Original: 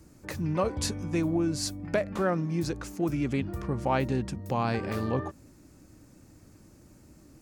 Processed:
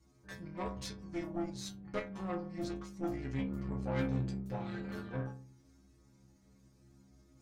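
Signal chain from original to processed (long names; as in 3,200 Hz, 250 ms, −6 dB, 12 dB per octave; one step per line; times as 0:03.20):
high-shelf EQ 11,000 Hz −11 dB
reversed playback
upward compression, threshold −49 dBFS
reversed playback
stiff-string resonator 63 Hz, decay 0.83 s, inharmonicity 0.008
harmonic generator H 8 −22 dB, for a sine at −23.5 dBFS
formants moved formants −2 semitones
level +1.5 dB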